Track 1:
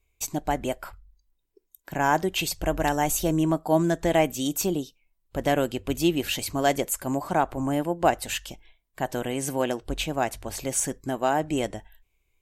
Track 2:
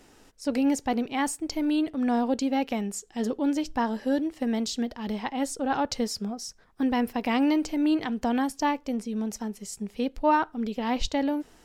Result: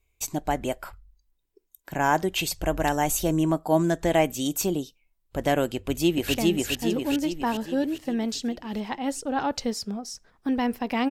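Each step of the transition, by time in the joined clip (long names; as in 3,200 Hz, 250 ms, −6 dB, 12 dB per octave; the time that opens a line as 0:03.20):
track 1
0:05.76–0:06.34: delay throw 410 ms, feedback 55%, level −0.5 dB
0:06.34: continue with track 2 from 0:02.68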